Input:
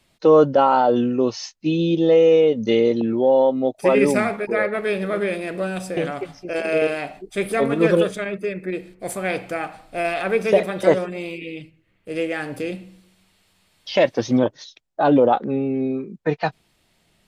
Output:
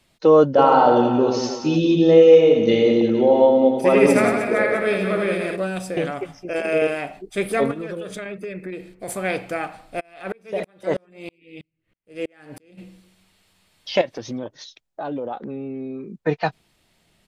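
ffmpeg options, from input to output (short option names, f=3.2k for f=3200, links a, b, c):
-filter_complex "[0:a]asplit=3[a][b][c];[a]afade=t=out:st=0.57:d=0.02[d];[b]aecho=1:1:80|180|305|461.2|656.6|900.7:0.631|0.398|0.251|0.158|0.1|0.0631,afade=t=in:st=0.57:d=0.02,afade=t=out:st=5.55:d=0.02[e];[c]afade=t=in:st=5.55:d=0.02[f];[d][e][f]amix=inputs=3:normalize=0,asettb=1/sr,asplit=3[g][h][i];[g]atrim=end=6.144[j];[h]atrim=start=6.14:end=7.13,asetpts=PTS-STARTPTS,afade=t=in:d=0.004:c=qsin,afade=t=out:st=0.986:d=0.004:c=qsin,equalizer=f=4.2k:w=5.8:g=-11.5[k];[i]atrim=start=7.126[l];[j][k]acrossfade=d=0.004:c1=hsin:c2=qsin[m];[m][l]acrossfade=d=0.004:c1=qsin:c2=hsin,asettb=1/sr,asplit=3[n][o][p];[n]atrim=end=7.714[q];[o]atrim=start=7.71:end=9.08,asetpts=PTS-STARTPTS,afade=t=in:d=0.004:c=qsin,afade=t=out:st=1.366:d=0.004:c=qsin,acompressor=threshold=-27dB:ratio=8:attack=3.2:release=140:knee=1:detection=peak[r];[p]atrim=start=9.076[s];[q][r]acrossfade=d=0.004:c1=hsin:c2=qsin[t];[t][s]acrossfade=d=0.004:c1=qsin:c2=hsin,asplit=3[u][v][w];[u]afade=t=out:st=9.99:d=0.02[x];[v]aeval=exprs='val(0)*pow(10,-38*if(lt(mod(-3.1*n/s,1),2*abs(-3.1)/1000),1-mod(-3.1*n/s,1)/(2*abs(-3.1)/1000),(mod(-3.1*n/s,1)-2*abs(-3.1)/1000)/(1-2*abs(-3.1)/1000))/20)':c=same,afade=t=in:st=9.99:d=0.02,afade=t=out:st=12.77:d=0.02[y];[w]afade=t=in:st=12.77:d=0.02[z];[x][y][z]amix=inputs=3:normalize=0,asettb=1/sr,asplit=3[aa][ab][ac];[aa]atrim=end=14.014[ad];[ab]atrim=start=14.01:end=16.06,asetpts=PTS-STARTPTS,afade=t=in:d=0.004:c=qsin,afade=t=out:st=2.046:d=0.004:c=qsin,acompressor=threshold=-30dB:ratio=3:attack=3.2:release=140:knee=1:detection=peak[ae];[ac]atrim=start=16.056[af];[ad][ae]acrossfade=d=0.004:c1=hsin:c2=qsin[ag];[ag][af]acrossfade=d=0.004:c1=qsin:c2=hsin"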